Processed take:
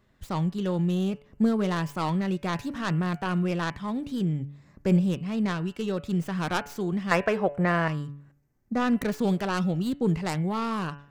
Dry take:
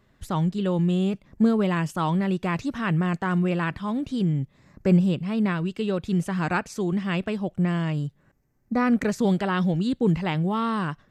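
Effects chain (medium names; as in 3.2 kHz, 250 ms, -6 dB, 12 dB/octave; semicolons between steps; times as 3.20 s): tracing distortion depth 0.32 ms; 7.11–7.88 s: high-order bell 980 Hz +12 dB 2.8 oct; de-hum 142.9 Hz, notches 21; trim -3 dB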